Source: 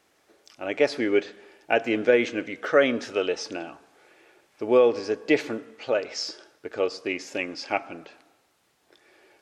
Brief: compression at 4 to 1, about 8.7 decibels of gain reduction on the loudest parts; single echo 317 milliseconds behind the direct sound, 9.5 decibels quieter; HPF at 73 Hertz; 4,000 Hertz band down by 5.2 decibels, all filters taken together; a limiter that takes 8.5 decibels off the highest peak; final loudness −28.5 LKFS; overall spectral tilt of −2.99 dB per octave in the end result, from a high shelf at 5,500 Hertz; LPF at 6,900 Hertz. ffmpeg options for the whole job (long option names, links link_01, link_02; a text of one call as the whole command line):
ffmpeg -i in.wav -af "highpass=73,lowpass=6900,equalizer=frequency=4000:width_type=o:gain=-5,highshelf=frequency=5500:gain=-4,acompressor=threshold=-24dB:ratio=4,alimiter=limit=-20dB:level=0:latency=1,aecho=1:1:317:0.335,volume=4.5dB" out.wav